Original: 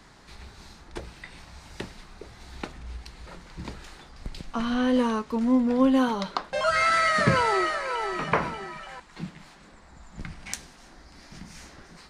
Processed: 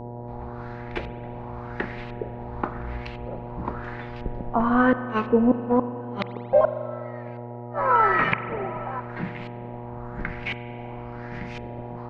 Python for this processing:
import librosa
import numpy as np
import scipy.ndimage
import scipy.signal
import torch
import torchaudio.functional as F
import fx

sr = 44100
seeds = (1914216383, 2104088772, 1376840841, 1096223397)

y = fx.dynamic_eq(x, sr, hz=110.0, q=1.2, threshold_db=-43.0, ratio=4.0, max_db=-5)
y = fx.gate_flip(y, sr, shuts_db=-16.0, range_db=-36)
y = fx.filter_lfo_lowpass(y, sr, shape='saw_up', hz=0.95, low_hz=430.0, high_hz=2900.0, q=2.8)
y = fx.dmg_buzz(y, sr, base_hz=120.0, harmonics=8, level_db=-42.0, tilt_db=-3, odd_only=False)
y = fx.rev_spring(y, sr, rt60_s=2.5, pass_ms=(41,), chirp_ms=65, drr_db=11.5)
y = y * 10.0 ** (5.0 / 20.0)